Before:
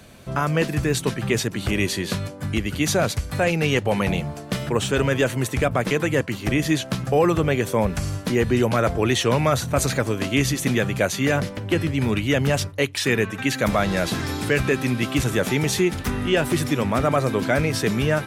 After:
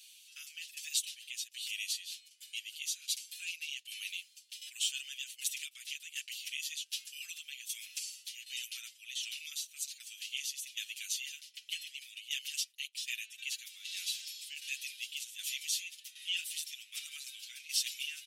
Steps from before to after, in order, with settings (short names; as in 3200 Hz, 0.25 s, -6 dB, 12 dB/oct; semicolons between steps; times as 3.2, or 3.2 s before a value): elliptic high-pass 2800 Hz, stop band 70 dB; vocal rider within 4 dB 2 s; tremolo saw down 1.3 Hz, depth 75%; endless flanger 6.5 ms -0.29 Hz